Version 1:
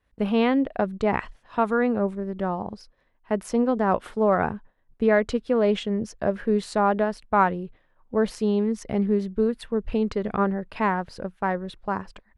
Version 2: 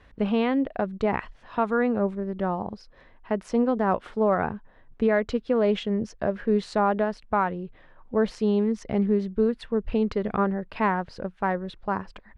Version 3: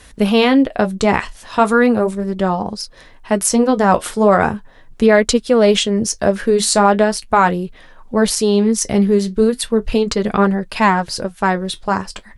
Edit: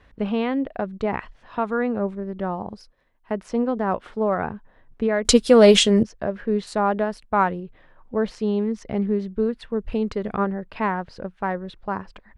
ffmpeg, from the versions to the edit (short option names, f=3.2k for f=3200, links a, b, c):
-filter_complex "[0:a]asplit=3[a][b][c];[1:a]asplit=5[d][e][f][g][h];[d]atrim=end=2.682[i];[a]atrim=start=2.678:end=3.322[j];[e]atrim=start=3.318:end=5.252[k];[2:a]atrim=start=5.248:end=6.032[l];[f]atrim=start=6.028:end=6.672[m];[b]atrim=start=6.668:end=7.602[n];[g]atrim=start=7.598:end=9.702[o];[c]atrim=start=9.698:end=10.452[p];[h]atrim=start=10.448[q];[i][j]acrossfade=d=0.004:c1=hsin:c2=hsin[r];[r][k]acrossfade=d=0.004:c1=hsin:c2=hsin[s];[s][l]acrossfade=d=0.004:c1=hsin:c2=hsin[t];[t][m]acrossfade=d=0.004:c1=hsin:c2=hsin[u];[u][n]acrossfade=d=0.004:c1=hsin:c2=hsin[v];[v][o]acrossfade=d=0.004:c1=hsin:c2=hsin[w];[w][p]acrossfade=d=0.004:c1=hsin:c2=hsin[x];[x][q]acrossfade=d=0.004:c1=hsin:c2=hsin"